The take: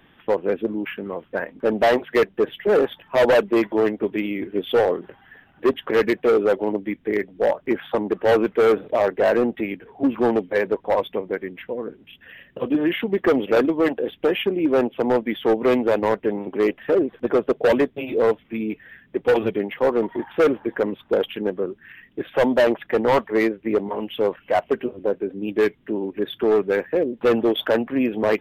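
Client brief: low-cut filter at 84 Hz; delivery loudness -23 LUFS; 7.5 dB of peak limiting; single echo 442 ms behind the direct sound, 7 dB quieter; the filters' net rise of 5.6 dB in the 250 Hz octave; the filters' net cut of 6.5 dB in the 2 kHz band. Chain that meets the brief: high-pass 84 Hz; peaking EQ 250 Hz +7.5 dB; peaking EQ 2 kHz -8.5 dB; peak limiter -13 dBFS; delay 442 ms -7 dB; trim -1 dB

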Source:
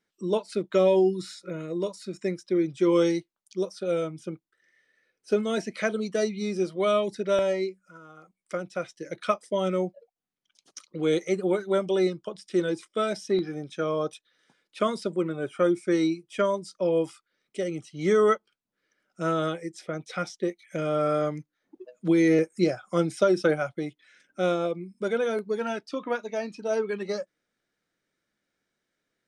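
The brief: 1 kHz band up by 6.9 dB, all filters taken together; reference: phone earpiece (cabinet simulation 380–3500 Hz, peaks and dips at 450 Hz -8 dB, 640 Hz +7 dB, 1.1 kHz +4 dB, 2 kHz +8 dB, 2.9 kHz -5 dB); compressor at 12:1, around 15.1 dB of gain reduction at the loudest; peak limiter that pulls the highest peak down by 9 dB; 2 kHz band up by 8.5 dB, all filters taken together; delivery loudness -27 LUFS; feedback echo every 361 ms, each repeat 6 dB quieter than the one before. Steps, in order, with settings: peaking EQ 1 kHz +4 dB; peaking EQ 2 kHz +4.5 dB; compression 12:1, threshold -31 dBFS; peak limiter -26.5 dBFS; cabinet simulation 380–3500 Hz, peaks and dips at 450 Hz -8 dB, 640 Hz +7 dB, 1.1 kHz +4 dB, 2 kHz +8 dB, 2.9 kHz -5 dB; feedback delay 361 ms, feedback 50%, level -6 dB; trim +10.5 dB

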